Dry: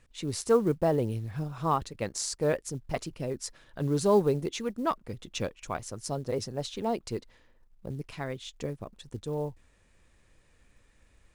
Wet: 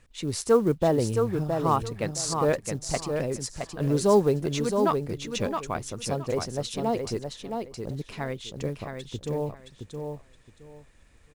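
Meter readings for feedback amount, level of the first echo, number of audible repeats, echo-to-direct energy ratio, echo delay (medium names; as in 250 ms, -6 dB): 21%, -5.5 dB, 3, -5.5 dB, 668 ms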